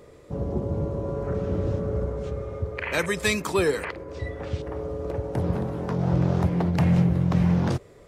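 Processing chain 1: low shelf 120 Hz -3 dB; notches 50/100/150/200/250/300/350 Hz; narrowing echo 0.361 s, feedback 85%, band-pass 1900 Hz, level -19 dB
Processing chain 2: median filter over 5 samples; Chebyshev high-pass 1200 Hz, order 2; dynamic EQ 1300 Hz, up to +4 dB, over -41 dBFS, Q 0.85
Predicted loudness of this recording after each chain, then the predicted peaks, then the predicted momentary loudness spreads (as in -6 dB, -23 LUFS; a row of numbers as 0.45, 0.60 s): -27.0, -32.5 LUFS; -10.0, -11.0 dBFS; 11, 20 LU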